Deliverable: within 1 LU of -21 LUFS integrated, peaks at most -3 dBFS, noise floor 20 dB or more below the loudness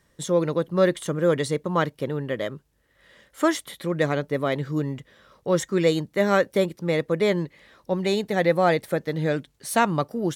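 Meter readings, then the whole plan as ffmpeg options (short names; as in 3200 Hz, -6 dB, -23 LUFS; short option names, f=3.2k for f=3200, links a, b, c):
loudness -24.5 LUFS; peak -7.0 dBFS; loudness target -21.0 LUFS
-> -af "volume=3.5dB"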